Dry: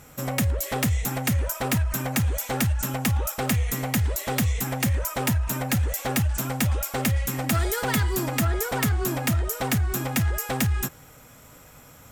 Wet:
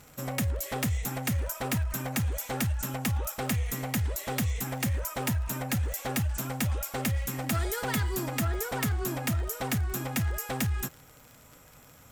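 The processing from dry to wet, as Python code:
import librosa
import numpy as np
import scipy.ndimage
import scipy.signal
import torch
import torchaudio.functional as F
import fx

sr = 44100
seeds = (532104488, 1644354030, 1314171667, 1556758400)

y = fx.dmg_crackle(x, sr, seeds[0], per_s=79.0, level_db=-34.0)
y = F.gain(torch.from_numpy(y), -5.5).numpy()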